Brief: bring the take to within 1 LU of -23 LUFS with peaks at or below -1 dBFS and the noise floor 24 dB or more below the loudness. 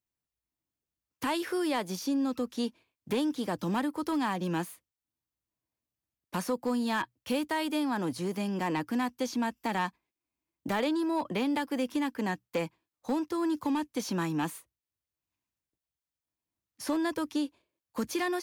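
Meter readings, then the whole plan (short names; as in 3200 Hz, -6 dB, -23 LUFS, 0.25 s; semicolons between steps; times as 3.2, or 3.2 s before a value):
clipped 0.5%; flat tops at -23.0 dBFS; loudness -32.0 LUFS; peak -23.0 dBFS; loudness target -23.0 LUFS
-> clip repair -23 dBFS; gain +9 dB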